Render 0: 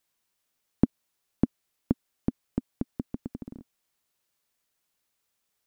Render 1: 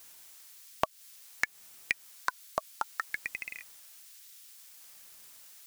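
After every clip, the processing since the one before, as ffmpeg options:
ffmpeg -i in.wav -af "acompressor=threshold=-25dB:ratio=6,aexciter=amount=11.5:drive=6.7:freq=2100,aeval=exprs='val(0)*sin(2*PI*1600*n/s+1600*0.45/0.58*sin(2*PI*0.58*n/s))':channel_layout=same,volume=2.5dB" out.wav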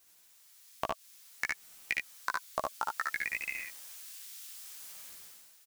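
ffmpeg -i in.wav -af "dynaudnorm=framelen=100:gausssize=11:maxgain=14.5dB,flanger=delay=15:depth=2.3:speed=2,aecho=1:1:60|72:0.562|0.708,volume=-8dB" out.wav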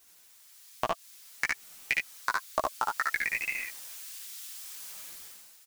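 ffmpeg -i in.wav -af "flanger=delay=2:depth=7.8:regen=-17:speed=1.9:shape=triangular,volume=8dB" out.wav

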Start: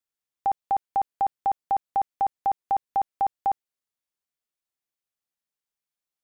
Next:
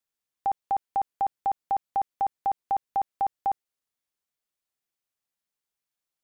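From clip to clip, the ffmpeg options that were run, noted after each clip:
ffmpeg -i in.wav -af "alimiter=limit=-21.5dB:level=0:latency=1,volume=1.5dB" out.wav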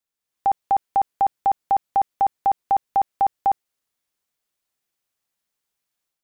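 ffmpeg -i in.wav -af "dynaudnorm=framelen=190:gausssize=3:maxgain=7dB" out.wav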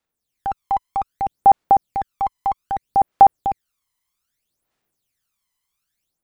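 ffmpeg -i in.wav -af "aphaser=in_gain=1:out_gain=1:delay=1:decay=0.74:speed=0.63:type=sinusoidal" out.wav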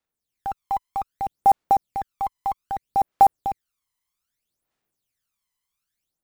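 ffmpeg -i in.wav -af "acrusher=bits=7:mode=log:mix=0:aa=0.000001,volume=-4.5dB" out.wav

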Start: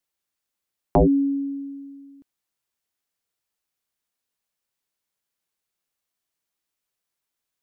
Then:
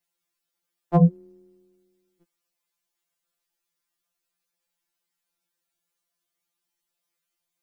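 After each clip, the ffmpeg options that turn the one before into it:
ffmpeg -i in.wav -af "afftfilt=real='re*2.83*eq(mod(b,8),0)':imag='im*2.83*eq(mod(b,8),0)':win_size=2048:overlap=0.75,volume=3dB" out.wav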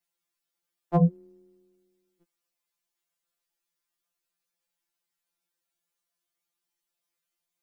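ffmpeg -i in.wav -af "equalizer=frequency=72:width_type=o:width=2.1:gain=-3.5,volume=-3dB" out.wav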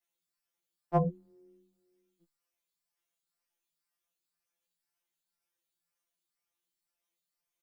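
ffmpeg -i in.wav -filter_complex "[0:a]asplit=2[link_01][link_02];[link_02]adelay=11.2,afreqshift=-2[link_03];[link_01][link_03]amix=inputs=2:normalize=1" out.wav

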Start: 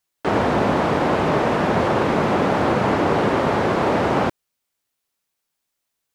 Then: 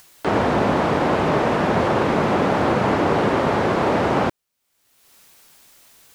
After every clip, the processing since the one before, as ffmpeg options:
ffmpeg -i in.wav -af "acompressor=mode=upward:threshold=-29dB:ratio=2.5" out.wav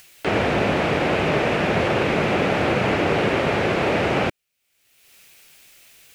ffmpeg -i in.wav -af "equalizer=frequency=250:width_type=o:width=0.67:gain=-4,equalizer=frequency=1000:width_type=o:width=0.67:gain=-7,equalizer=frequency=2500:width_type=o:width=0.67:gain=8" out.wav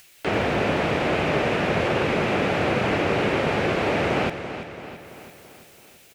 ffmpeg -i in.wav -af "aecho=1:1:335|670|1005|1340|1675|2010:0.282|0.155|0.0853|0.0469|0.0258|0.0142,volume=-2.5dB" out.wav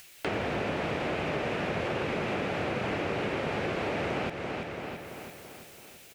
ffmpeg -i in.wav -af "acompressor=threshold=-31dB:ratio=3" out.wav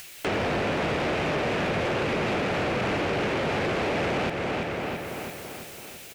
ffmpeg -i in.wav -af "asoftclip=type=tanh:threshold=-30.5dB,volume=8.5dB" out.wav

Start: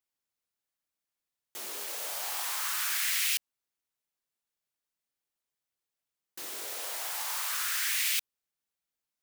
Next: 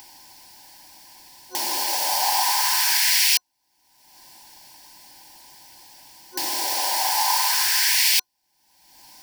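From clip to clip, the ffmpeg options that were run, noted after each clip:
ffmpeg -i in.wav -filter_complex "[0:a]asplit=2[link_01][link_02];[link_02]alimiter=level_in=4dB:limit=-24dB:level=0:latency=1:release=22,volume=-4dB,volume=-2.5dB[link_03];[link_01][link_03]amix=inputs=2:normalize=0,superequalizer=6b=1.58:7b=0.447:9b=3.55:10b=0.251:14b=2.24,acompressor=mode=upward:threshold=-32dB:ratio=2.5,volume=7dB" out.wav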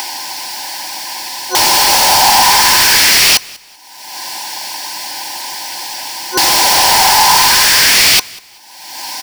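ffmpeg -i in.wav -filter_complex "[0:a]asplit=2[link_01][link_02];[link_02]highpass=frequency=720:poles=1,volume=28dB,asoftclip=type=tanh:threshold=-5.5dB[link_03];[link_01][link_03]amix=inputs=2:normalize=0,lowpass=frequency=5200:poles=1,volume=-6dB,aecho=1:1:193|386:0.0708|0.0205,volume=6dB" out.wav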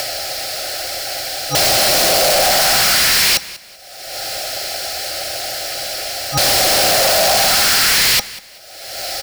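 ffmpeg -i in.wav -af "volume=8.5dB,asoftclip=hard,volume=-8.5dB,afreqshift=-230,asoftclip=type=tanh:threshold=-8dB" out.wav

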